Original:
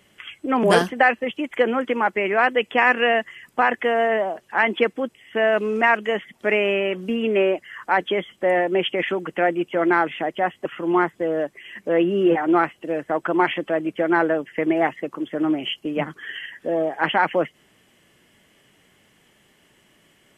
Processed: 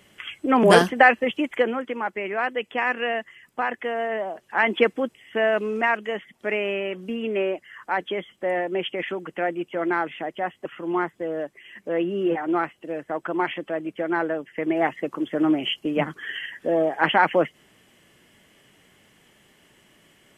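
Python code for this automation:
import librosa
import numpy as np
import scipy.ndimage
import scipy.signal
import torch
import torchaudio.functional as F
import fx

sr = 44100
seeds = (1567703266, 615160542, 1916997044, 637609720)

y = fx.gain(x, sr, db=fx.line((1.42, 2.0), (1.85, -7.0), (4.09, -7.0), (4.86, 1.0), (6.09, -5.5), (14.53, -5.5), (15.08, 1.0)))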